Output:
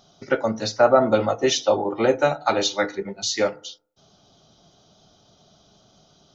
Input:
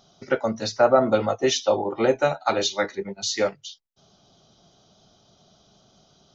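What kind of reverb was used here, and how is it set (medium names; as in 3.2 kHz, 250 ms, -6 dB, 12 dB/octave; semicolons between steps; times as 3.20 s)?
FDN reverb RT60 0.53 s, low-frequency decay 1×, high-frequency decay 0.3×, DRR 15 dB; trim +1.5 dB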